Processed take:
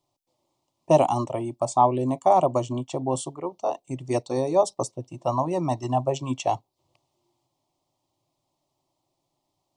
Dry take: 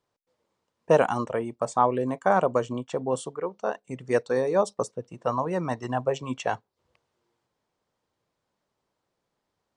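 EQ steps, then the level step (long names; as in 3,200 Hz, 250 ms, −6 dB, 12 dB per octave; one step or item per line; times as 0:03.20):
parametric band 1,600 Hz −6 dB 0.81 octaves
phaser with its sweep stopped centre 310 Hz, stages 8
+6.0 dB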